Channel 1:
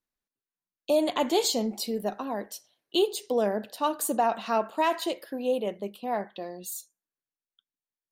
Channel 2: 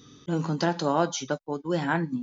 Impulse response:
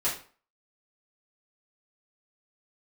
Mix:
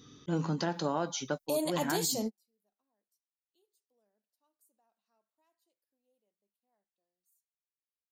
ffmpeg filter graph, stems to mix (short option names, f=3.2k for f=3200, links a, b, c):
-filter_complex "[0:a]aexciter=amount=3.1:drive=6.9:freq=4.6k,adelay=600,volume=-3.5dB[a];[1:a]volume=-4dB,asplit=2[b][c];[c]apad=whole_len=384126[d];[a][d]sidechaingate=range=-49dB:threshold=-43dB:ratio=16:detection=peak[e];[e][b]amix=inputs=2:normalize=0,alimiter=limit=-20.5dB:level=0:latency=1:release=186"